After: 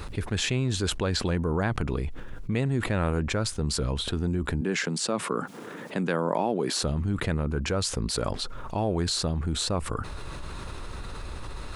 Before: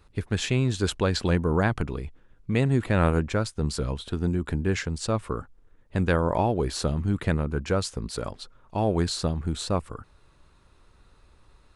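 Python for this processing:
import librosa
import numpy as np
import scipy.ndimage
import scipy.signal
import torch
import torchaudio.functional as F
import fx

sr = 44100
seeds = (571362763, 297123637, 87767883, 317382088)

y = fx.steep_highpass(x, sr, hz=160.0, slope=36, at=(4.61, 6.83))
y = fx.env_flatten(y, sr, amount_pct=70)
y = y * librosa.db_to_amplitude(-5.5)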